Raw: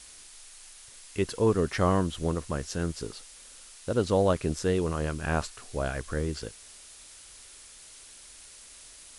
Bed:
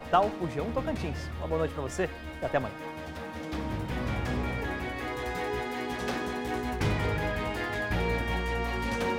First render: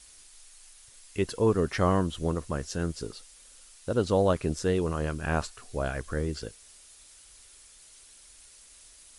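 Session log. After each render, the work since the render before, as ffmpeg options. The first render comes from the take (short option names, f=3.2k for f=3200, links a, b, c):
-af "afftdn=nr=6:nf=-50"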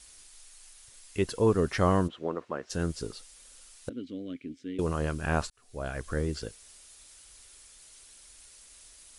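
-filter_complex "[0:a]asplit=3[a][b][c];[a]afade=t=out:st=2.07:d=0.02[d];[b]highpass=320,lowpass=2.3k,afade=t=in:st=2.07:d=0.02,afade=t=out:st=2.69:d=0.02[e];[c]afade=t=in:st=2.69:d=0.02[f];[d][e][f]amix=inputs=3:normalize=0,asettb=1/sr,asplit=3[g][h][i];[g]atrim=end=3.894[j];[h]atrim=start=3.89:end=4.79,asetpts=PTS-STARTPTS,afade=t=in:d=0.004:c=qsin,afade=t=out:st=0.896:d=0.004:c=qsin,asplit=3[k][l][m];[k]bandpass=f=270:t=q:w=8,volume=0dB[n];[l]bandpass=f=2.29k:t=q:w=8,volume=-6dB[o];[m]bandpass=f=3.01k:t=q:w=8,volume=-9dB[p];[n][o][p]amix=inputs=3:normalize=0[q];[i]atrim=start=4.786[r];[j][q]acrossfade=d=0.004:c1=hsin:c2=qsin[s];[s][r]acrossfade=d=0.004:c1=qsin:c2=hsin,asplit=2[t][u];[t]atrim=end=5.5,asetpts=PTS-STARTPTS,afade=t=out:st=5.496:d=0.004:c=hsin[v];[u]atrim=start=5.5,asetpts=PTS-STARTPTS,afade=t=in:d=0.61[w];[v][w]concat=n=2:v=0:a=1"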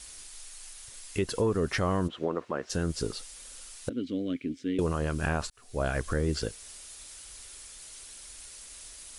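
-af "acontrast=72,alimiter=limit=-18dB:level=0:latency=1:release=188"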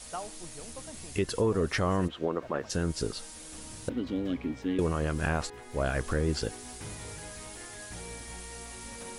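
-filter_complex "[1:a]volume=-15dB[a];[0:a][a]amix=inputs=2:normalize=0"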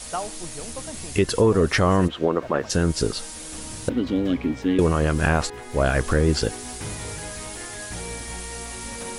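-af "volume=9dB"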